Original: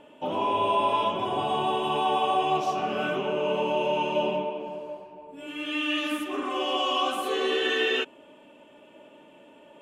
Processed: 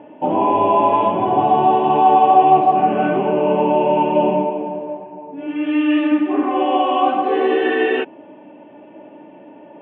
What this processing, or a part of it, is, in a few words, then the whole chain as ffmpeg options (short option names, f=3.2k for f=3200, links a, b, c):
bass cabinet: -af "highpass=88,equalizer=f=120:t=q:w=4:g=5,equalizer=f=190:t=q:w=4:g=5,equalizer=f=310:t=q:w=4:g=8,equalizer=f=780:t=q:w=4:g=8,equalizer=f=1.3k:t=q:w=4:g=-8,lowpass=f=2.2k:w=0.5412,lowpass=f=2.2k:w=1.3066,volume=8dB"